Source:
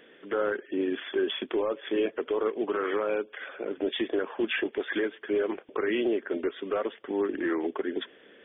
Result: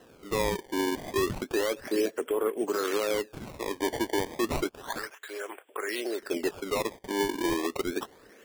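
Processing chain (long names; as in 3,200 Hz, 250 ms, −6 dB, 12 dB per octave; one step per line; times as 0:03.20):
0:04.68–0:06.20: high-pass filter 1,400 Hz → 460 Hz 12 dB per octave
sample-and-hold swept by an LFO 19×, swing 160% 0.31 Hz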